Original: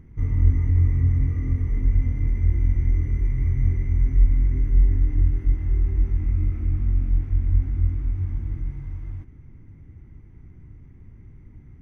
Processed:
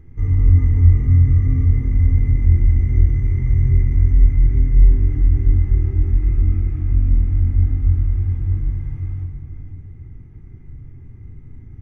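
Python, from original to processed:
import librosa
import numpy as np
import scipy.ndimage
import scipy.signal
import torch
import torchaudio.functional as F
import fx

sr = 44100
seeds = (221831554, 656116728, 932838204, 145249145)

y = x + 10.0 ** (-10.0 / 20.0) * np.pad(x, (int(489 * sr / 1000.0), 0))[:len(x)]
y = fx.room_shoebox(y, sr, seeds[0], volume_m3=3900.0, walls='furnished', distance_m=3.9)
y = y * 10.0 ** (-1.0 / 20.0)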